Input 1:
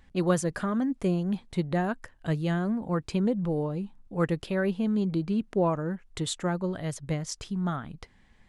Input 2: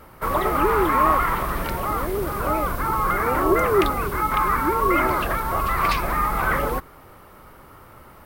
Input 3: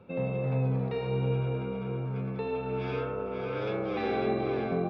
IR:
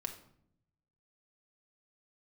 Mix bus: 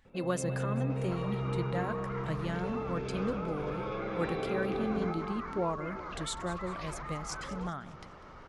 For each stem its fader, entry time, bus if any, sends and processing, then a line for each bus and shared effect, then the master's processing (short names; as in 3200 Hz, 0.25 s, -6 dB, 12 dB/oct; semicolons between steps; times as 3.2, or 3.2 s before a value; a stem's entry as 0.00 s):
-5.0 dB, 0.00 s, no bus, no send, echo send -16 dB, low shelf 400 Hz -5.5 dB
-4.0 dB, 0.90 s, bus A, no send, no echo send, compressor 2.5:1, threshold -36 dBFS, peak gain reduction 14.5 dB; steep low-pass 6800 Hz 72 dB/oct
-2.0 dB, 0.05 s, bus A, no send, echo send -5 dB, auto duck -8 dB, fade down 0.30 s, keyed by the first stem
bus A: 0.0 dB, limiter -33.5 dBFS, peak gain reduction 10 dB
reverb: off
echo: feedback echo 0.198 s, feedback 45%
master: dry